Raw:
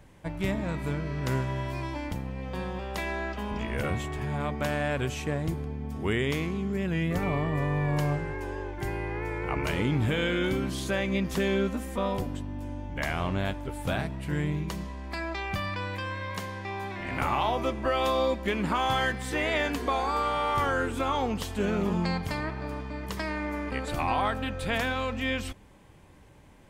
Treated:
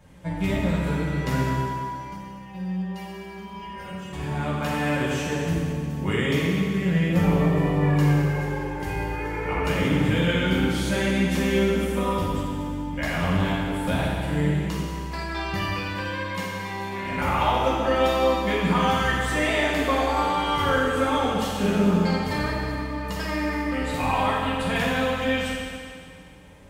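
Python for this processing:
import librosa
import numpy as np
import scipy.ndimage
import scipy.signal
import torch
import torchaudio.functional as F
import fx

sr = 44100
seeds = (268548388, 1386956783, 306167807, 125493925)

y = fx.stiff_resonator(x, sr, f0_hz=190.0, decay_s=0.2, stiffness=0.002, at=(1.55, 4.13))
y = fx.rev_fdn(y, sr, rt60_s=2.2, lf_ratio=0.85, hf_ratio=0.95, size_ms=33.0, drr_db=-7.0)
y = y * 10.0 ** (-2.5 / 20.0)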